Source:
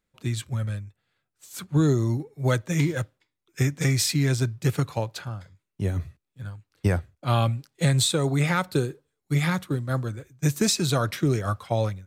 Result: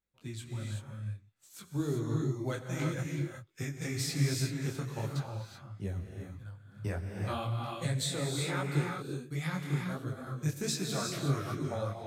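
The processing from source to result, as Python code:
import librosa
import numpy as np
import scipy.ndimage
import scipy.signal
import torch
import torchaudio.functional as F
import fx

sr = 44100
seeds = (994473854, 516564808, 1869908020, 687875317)

y = fx.rev_gated(x, sr, seeds[0], gate_ms=400, shape='rising', drr_db=1.0)
y = fx.detune_double(y, sr, cents=48)
y = F.gain(torch.from_numpy(y), -8.0).numpy()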